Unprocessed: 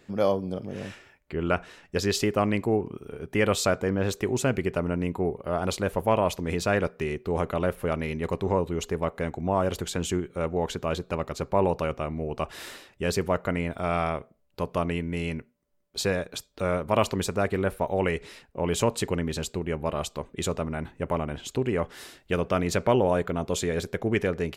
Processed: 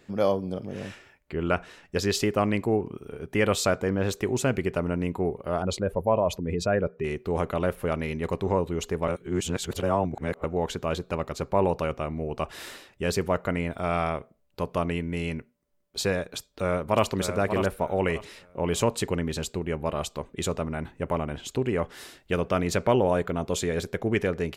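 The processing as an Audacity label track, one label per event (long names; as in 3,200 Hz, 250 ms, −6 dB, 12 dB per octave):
5.620000	7.040000	expanding power law on the bin magnitudes exponent 1.6
9.080000	10.440000	reverse
16.380000	17.080000	delay throw 590 ms, feedback 25%, level −7.5 dB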